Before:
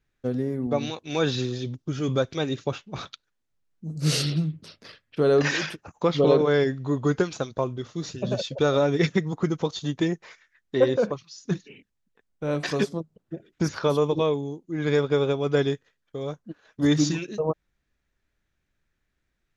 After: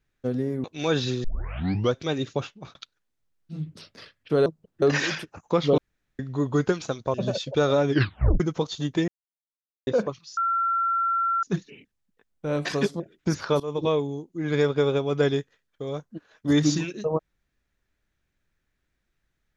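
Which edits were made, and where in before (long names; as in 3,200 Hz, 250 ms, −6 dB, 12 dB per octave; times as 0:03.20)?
0:00.64–0:00.95: remove
0:01.55: tape start 0.70 s
0:02.81–0:03.06: fade out
0:03.88–0:04.44: remove, crossfade 0.16 s
0:06.29–0:06.70: fill with room tone
0:07.65–0:08.18: remove
0:08.94: tape stop 0.50 s
0:10.12–0:10.91: silence
0:11.41: insert tone 1,360 Hz −21 dBFS 1.06 s
0:12.98–0:13.34: move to 0:05.33
0:13.94–0:14.22: fade in, from −20.5 dB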